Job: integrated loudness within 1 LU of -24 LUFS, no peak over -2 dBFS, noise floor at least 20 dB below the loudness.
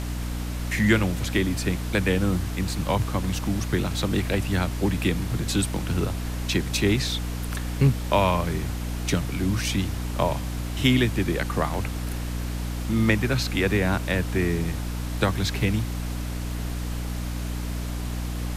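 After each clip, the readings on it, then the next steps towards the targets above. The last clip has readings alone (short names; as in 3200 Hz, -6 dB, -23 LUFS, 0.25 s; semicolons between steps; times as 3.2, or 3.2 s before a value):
hum 60 Hz; harmonics up to 300 Hz; hum level -27 dBFS; noise floor -30 dBFS; noise floor target -46 dBFS; loudness -25.5 LUFS; peak -5.5 dBFS; loudness target -24.0 LUFS
-> de-hum 60 Hz, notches 5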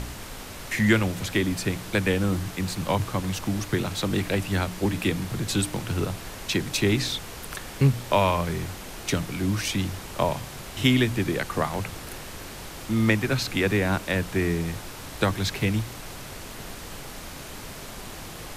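hum none; noise floor -39 dBFS; noise floor target -46 dBFS
-> noise print and reduce 7 dB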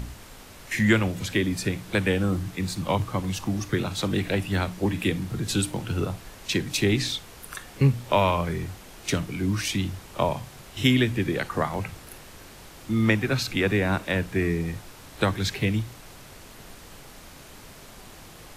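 noise floor -46 dBFS; loudness -26.0 LUFS; peak -5.0 dBFS; loudness target -24.0 LUFS
-> gain +2 dB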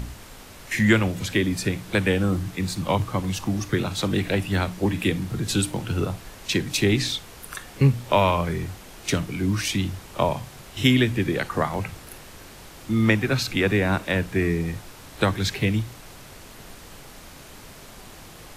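loudness -24.0 LUFS; peak -3.0 dBFS; noise floor -44 dBFS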